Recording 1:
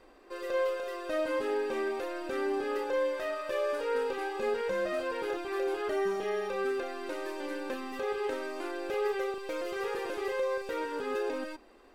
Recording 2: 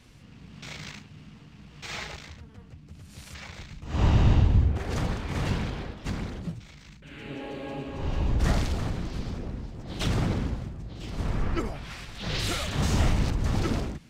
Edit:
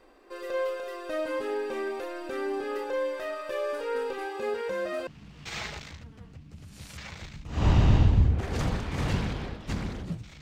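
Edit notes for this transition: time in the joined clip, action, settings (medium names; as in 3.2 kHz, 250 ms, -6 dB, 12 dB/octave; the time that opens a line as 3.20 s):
recording 1
4.25–5.07 s: high-pass 41 Hz 12 dB/octave
5.07 s: go over to recording 2 from 1.44 s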